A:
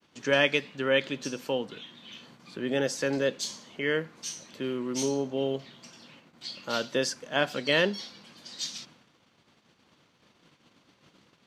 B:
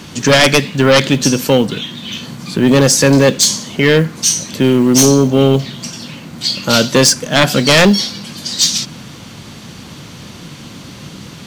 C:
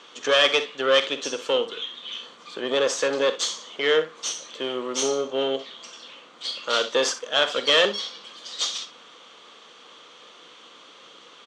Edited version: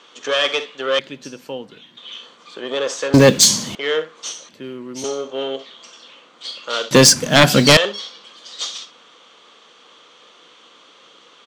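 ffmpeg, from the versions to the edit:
-filter_complex "[0:a]asplit=2[s0][s1];[1:a]asplit=2[s2][s3];[2:a]asplit=5[s4][s5][s6][s7][s8];[s4]atrim=end=0.992[s9];[s0]atrim=start=0.988:end=1.972[s10];[s5]atrim=start=1.968:end=3.142[s11];[s2]atrim=start=3.138:end=3.752[s12];[s6]atrim=start=3.748:end=4.492[s13];[s1]atrim=start=4.488:end=5.042[s14];[s7]atrim=start=5.038:end=6.912[s15];[s3]atrim=start=6.908:end=7.772[s16];[s8]atrim=start=7.768[s17];[s9][s10]acrossfade=d=0.004:c1=hsin:c2=hsin[s18];[s18][s11]acrossfade=d=0.004:c1=hsin:c2=hsin[s19];[s19][s12]acrossfade=d=0.004:c1=hsin:c2=hsin[s20];[s20][s13]acrossfade=d=0.004:c1=hsin:c2=hsin[s21];[s21][s14]acrossfade=d=0.004:c1=hsin:c2=hsin[s22];[s22][s15]acrossfade=d=0.004:c1=hsin:c2=hsin[s23];[s23][s16]acrossfade=d=0.004:c1=hsin:c2=hsin[s24];[s24][s17]acrossfade=d=0.004:c1=hsin:c2=hsin"

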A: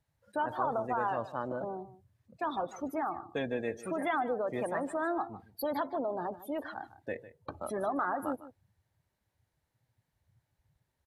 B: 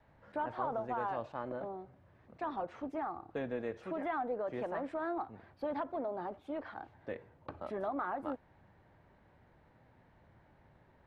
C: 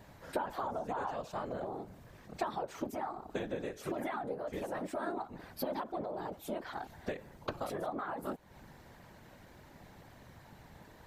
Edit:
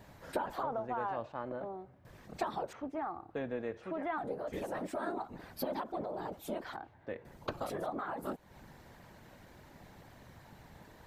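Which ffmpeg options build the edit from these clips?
-filter_complex "[1:a]asplit=3[s0][s1][s2];[2:a]asplit=4[s3][s4][s5][s6];[s3]atrim=end=0.632[s7];[s0]atrim=start=0.628:end=2.052[s8];[s4]atrim=start=2.048:end=2.732[s9];[s1]atrim=start=2.728:end=4.182[s10];[s5]atrim=start=4.178:end=6.762[s11];[s2]atrim=start=6.758:end=7.252[s12];[s6]atrim=start=7.248[s13];[s7][s8]acrossfade=d=0.004:c1=hsin:c2=hsin[s14];[s14][s9]acrossfade=d=0.004:c1=hsin:c2=hsin[s15];[s15][s10]acrossfade=d=0.004:c1=hsin:c2=hsin[s16];[s16][s11]acrossfade=d=0.004:c1=hsin:c2=hsin[s17];[s17][s12]acrossfade=d=0.004:c1=hsin:c2=hsin[s18];[s18][s13]acrossfade=d=0.004:c1=hsin:c2=hsin"

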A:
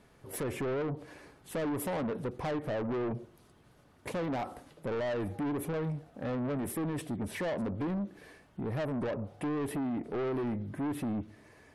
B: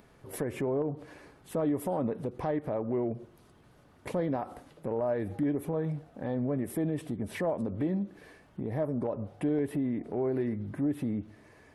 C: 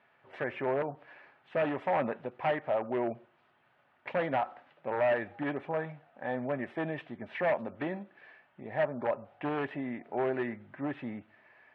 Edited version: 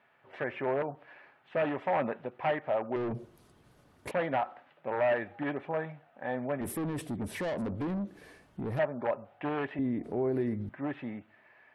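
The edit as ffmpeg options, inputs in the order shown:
-filter_complex "[0:a]asplit=2[s0][s1];[2:a]asplit=4[s2][s3][s4][s5];[s2]atrim=end=2.962[s6];[s0]atrim=start=2.958:end=4.112[s7];[s3]atrim=start=4.108:end=6.612[s8];[s1]atrim=start=6.608:end=8.792[s9];[s4]atrim=start=8.788:end=9.792[s10];[1:a]atrim=start=9.788:end=10.692[s11];[s5]atrim=start=10.688[s12];[s6][s7]acrossfade=d=0.004:c1=hsin:c2=hsin[s13];[s13][s8]acrossfade=d=0.004:c1=hsin:c2=hsin[s14];[s14][s9]acrossfade=d=0.004:c1=hsin:c2=hsin[s15];[s15][s10]acrossfade=d=0.004:c1=hsin:c2=hsin[s16];[s16][s11]acrossfade=d=0.004:c1=hsin:c2=hsin[s17];[s17][s12]acrossfade=d=0.004:c1=hsin:c2=hsin"

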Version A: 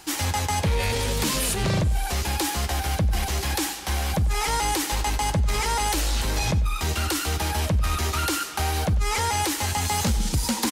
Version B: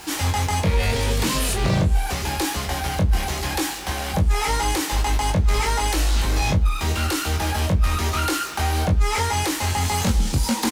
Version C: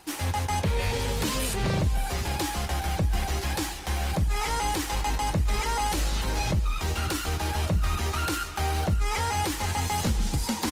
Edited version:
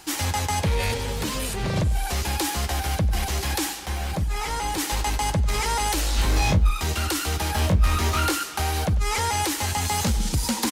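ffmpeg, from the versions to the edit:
-filter_complex "[2:a]asplit=2[s0][s1];[1:a]asplit=2[s2][s3];[0:a]asplit=5[s4][s5][s6][s7][s8];[s4]atrim=end=0.942[s9];[s0]atrim=start=0.938:end=1.762[s10];[s5]atrim=start=1.758:end=3.862[s11];[s1]atrim=start=3.858:end=4.782[s12];[s6]atrim=start=4.778:end=6.182[s13];[s2]atrim=start=6.178:end=6.712[s14];[s7]atrim=start=6.708:end=7.552[s15];[s3]atrim=start=7.548:end=8.322[s16];[s8]atrim=start=8.318[s17];[s9][s10]acrossfade=d=0.004:c1=hsin:c2=hsin[s18];[s18][s11]acrossfade=d=0.004:c1=hsin:c2=hsin[s19];[s19][s12]acrossfade=d=0.004:c1=hsin:c2=hsin[s20];[s20][s13]acrossfade=d=0.004:c1=hsin:c2=hsin[s21];[s21][s14]acrossfade=d=0.004:c1=hsin:c2=hsin[s22];[s22][s15]acrossfade=d=0.004:c1=hsin:c2=hsin[s23];[s23][s16]acrossfade=d=0.004:c1=hsin:c2=hsin[s24];[s24][s17]acrossfade=d=0.004:c1=hsin:c2=hsin"

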